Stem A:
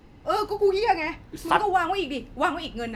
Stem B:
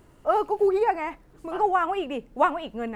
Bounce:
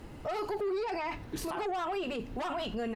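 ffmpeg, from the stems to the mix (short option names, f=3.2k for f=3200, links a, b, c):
-filter_complex "[0:a]volume=2.5dB[a];[1:a]acrossover=split=3200[b][c];[c]acompressor=threshold=-58dB:ratio=4:attack=1:release=60[d];[b][d]amix=inputs=2:normalize=0,asoftclip=type=tanh:threshold=-25.5dB,volume=-1,volume=1.5dB,asplit=2[e][f];[f]apad=whole_len=134573[g];[a][g]sidechaincompress=threshold=-35dB:ratio=8:attack=16:release=210[h];[h][e]amix=inputs=2:normalize=0,alimiter=level_in=4dB:limit=-24dB:level=0:latency=1:release=11,volume=-4dB"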